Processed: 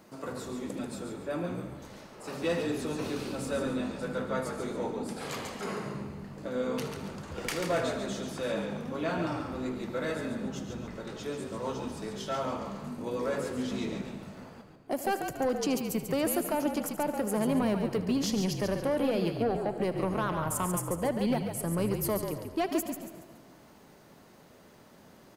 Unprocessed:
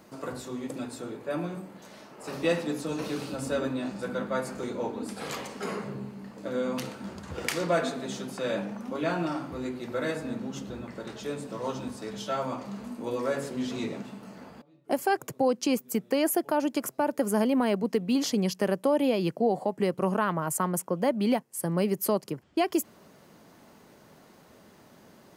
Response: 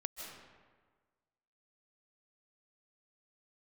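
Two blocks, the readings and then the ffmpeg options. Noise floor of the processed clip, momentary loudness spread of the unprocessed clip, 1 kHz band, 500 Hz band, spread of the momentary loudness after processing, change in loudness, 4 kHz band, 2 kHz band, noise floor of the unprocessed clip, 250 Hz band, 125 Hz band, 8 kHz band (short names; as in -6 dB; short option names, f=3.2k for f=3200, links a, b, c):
-55 dBFS, 13 LU, -3.0 dB, -2.5 dB, 11 LU, -2.5 dB, -2.0 dB, -2.5 dB, -56 dBFS, -2.5 dB, 0.0 dB, -1.5 dB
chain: -filter_complex "[0:a]asoftclip=type=tanh:threshold=-20dB,asplit=5[a][b][c][d][e];[b]adelay=140,afreqshift=-51,volume=-6.5dB[f];[c]adelay=280,afreqshift=-102,volume=-15.6dB[g];[d]adelay=420,afreqshift=-153,volume=-24.7dB[h];[e]adelay=560,afreqshift=-204,volume=-33.9dB[i];[a][f][g][h][i]amix=inputs=5:normalize=0,asplit=2[j][k];[1:a]atrim=start_sample=2205,adelay=78[l];[k][l]afir=irnorm=-1:irlink=0,volume=-11.5dB[m];[j][m]amix=inputs=2:normalize=0,volume=-2dB"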